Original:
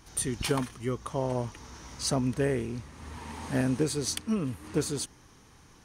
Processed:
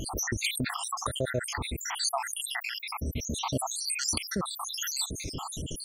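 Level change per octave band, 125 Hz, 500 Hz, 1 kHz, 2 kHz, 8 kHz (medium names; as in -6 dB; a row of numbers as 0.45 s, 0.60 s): -4.0 dB, -6.0 dB, +4.5 dB, +6.0 dB, +4.5 dB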